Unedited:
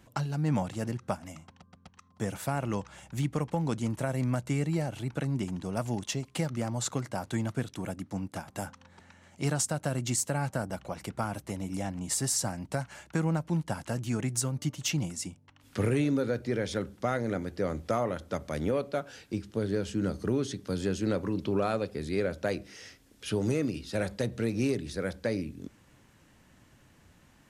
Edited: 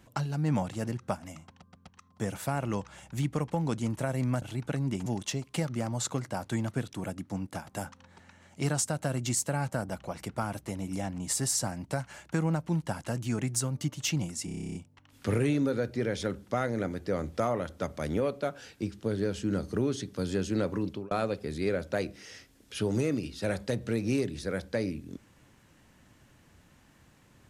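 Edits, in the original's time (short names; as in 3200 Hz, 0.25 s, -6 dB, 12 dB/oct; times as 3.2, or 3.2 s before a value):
4.42–4.9 cut
5.54–5.87 cut
15.26 stutter 0.03 s, 11 plays
21.34–21.62 fade out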